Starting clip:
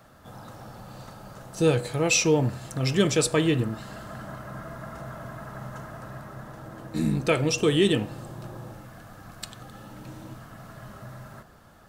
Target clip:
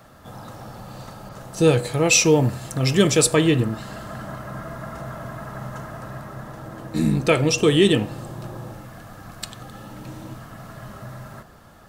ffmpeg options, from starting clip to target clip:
-filter_complex "[0:a]bandreject=f=1.5k:w=23,asettb=1/sr,asplit=3[a][b][c];[a]atrim=end=1.294[d];[b]atrim=start=1.29:end=3.35,asetpts=PTS-STARTPTS,afade=t=in:d=0.004:c=qsin,afade=t=out:st=2.056:d=0.004:c=qsin,adynamicequalizer=threshold=0.0158:dfrequency=7500:dqfactor=0.7:tfrequency=7500:tqfactor=0.7:attack=5:release=100:ratio=0.375:range=3:mode=boostabove:tftype=highshelf[e];[c]atrim=start=3.346[f];[d][e]acrossfade=d=0.004:c1=hsin:c2=qsin[g];[g][f]acrossfade=d=0.004:c1=qsin:c2=hsin,volume=5dB"

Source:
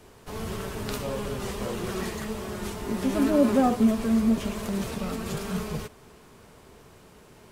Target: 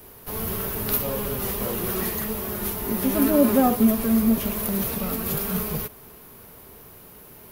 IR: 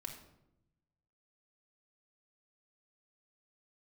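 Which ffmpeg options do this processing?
-af "aexciter=amount=12.6:drive=4.2:freq=11k,volume=2.5dB"

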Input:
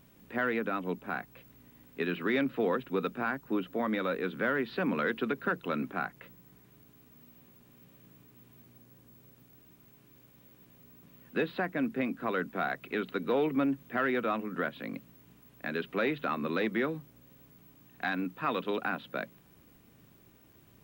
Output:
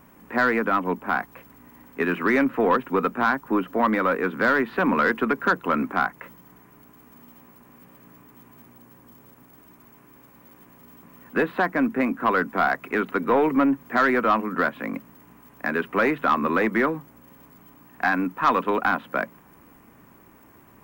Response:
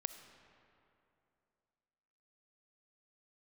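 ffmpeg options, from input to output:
-filter_complex "[0:a]equalizer=f=125:t=o:w=1:g=-4,equalizer=f=250:t=o:w=1:g=4,equalizer=f=1k:t=o:w=1:g=11,equalizer=f=2k:t=o:w=1:g=5,equalizer=f=4k:t=o:w=1:g=-12,acrossover=split=860|3200[a][b][c];[c]acrusher=bits=2:mode=log:mix=0:aa=0.000001[d];[a][b][d]amix=inputs=3:normalize=0,aeval=exprs='0.335*(cos(1*acos(clip(val(0)/0.335,-1,1)))-cos(1*PI/2))+0.00668*(cos(4*acos(clip(val(0)/0.335,-1,1)))-cos(4*PI/2))+0.0299*(cos(5*acos(clip(val(0)/0.335,-1,1)))-cos(5*PI/2))+0.00841*(cos(6*acos(clip(val(0)/0.335,-1,1)))-cos(6*PI/2))':c=same,volume=2.5dB"

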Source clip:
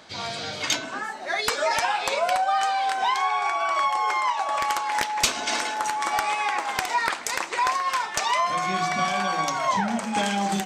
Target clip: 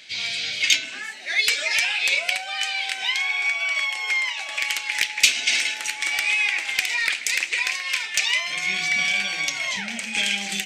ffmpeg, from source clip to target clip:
-af "acontrast=62,highshelf=f=1.6k:t=q:w=3:g=13.5,volume=-16dB"

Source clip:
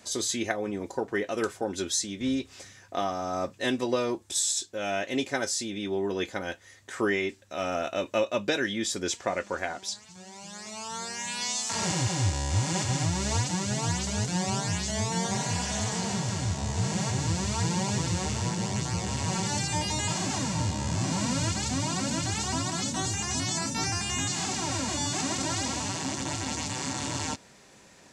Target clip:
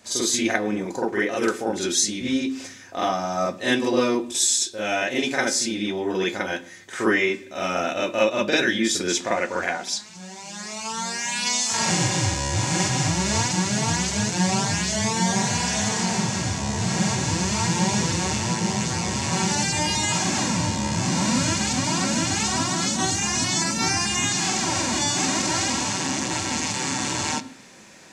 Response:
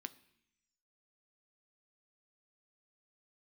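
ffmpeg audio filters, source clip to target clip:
-filter_complex "[0:a]asplit=2[a][b];[b]highpass=140[c];[1:a]atrim=start_sample=2205,asetrate=43659,aresample=44100,adelay=45[d];[c][d]afir=irnorm=-1:irlink=0,volume=10.5dB[e];[a][e]amix=inputs=2:normalize=0"

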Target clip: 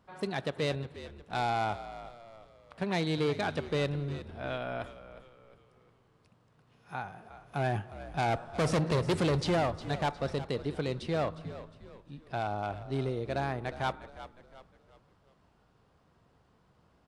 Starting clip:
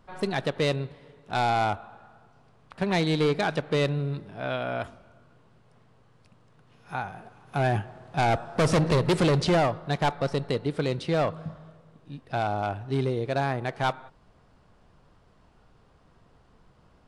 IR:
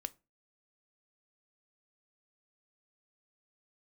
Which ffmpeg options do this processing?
-filter_complex "[0:a]highpass=56,asplit=5[a][b][c][d][e];[b]adelay=358,afreqshift=-61,volume=-14dB[f];[c]adelay=716,afreqshift=-122,volume=-21.7dB[g];[d]adelay=1074,afreqshift=-183,volume=-29.5dB[h];[e]adelay=1432,afreqshift=-244,volume=-37.2dB[i];[a][f][g][h][i]amix=inputs=5:normalize=0,volume=-6dB"

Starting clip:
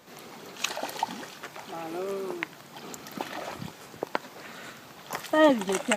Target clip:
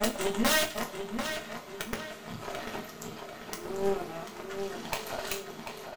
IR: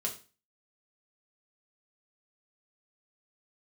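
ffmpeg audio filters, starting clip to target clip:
-filter_complex "[0:a]areverse,asplit=2[a][b];[b]alimiter=limit=-19dB:level=0:latency=1:release=190,volume=-3dB[c];[a][c]amix=inputs=2:normalize=0,aeval=exprs='(mod(3.98*val(0)+1,2)-1)/3.98':c=same,asplit=2[d][e];[e]adelay=741,lowpass=f=4.4k:p=1,volume=-6dB,asplit=2[f][g];[g]adelay=741,lowpass=f=4.4k:p=1,volume=0.51,asplit=2[h][i];[i]adelay=741,lowpass=f=4.4k:p=1,volume=0.51,asplit=2[j][k];[k]adelay=741,lowpass=f=4.4k:p=1,volume=0.51,asplit=2[l][m];[m]adelay=741,lowpass=f=4.4k:p=1,volume=0.51,asplit=2[n][o];[o]adelay=741,lowpass=f=4.4k:p=1,volume=0.51[p];[d][f][h][j][l][n][p]amix=inputs=7:normalize=0[q];[1:a]atrim=start_sample=2205[r];[q][r]afir=irnorm=-1:irlink=0,aeval=exprs='0.631*(cos(1*acos(clip(val(0)/0.631,-1,1)))-cos(1*PI/2))+0.0251*(cos(7*acos(clip(val(0)/0.631,-1,1)))-cos(7*PI/2))+0.0562*(cos(8*acos(clip(val(0)/0.631,-1,1)))-cos(8*PI/2))':c=same,volume=-7.5dB"

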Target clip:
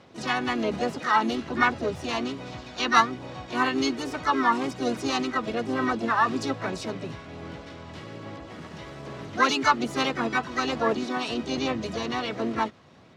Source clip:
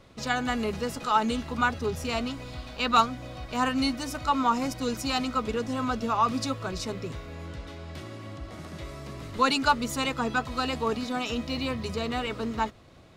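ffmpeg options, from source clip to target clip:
-filter_complex "[0:a]aphaser=in_gain=1:out_gain=1:delay=1.1:decay=0.22:speed=1.2:type=sinusoidal,highpass=130,lowpass=4.3k,asplit=3[a][b][c];[b]asetrate=52444,aresample=44100,atempo=0.840896,volume=-10dB[d];[c]asetrate=66075,aresample=44100,atempo=0.66742,volume=-5dB[e];[a][d][e]amix=inputs=3:normalize=0"

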